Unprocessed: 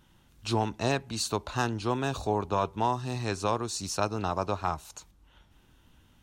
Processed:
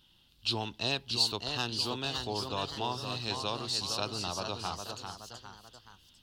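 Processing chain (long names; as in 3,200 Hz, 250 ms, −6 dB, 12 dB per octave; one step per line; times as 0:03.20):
flat-topped bell 3,700 Hz +14.5 dB 1.1 octaves
delay with pitch and tempo change per echo 655 ms, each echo +1 semitone, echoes 3, each echo −6 dB
high-shelf EQ 10,000 Hz +8 dB
level −8.5 dB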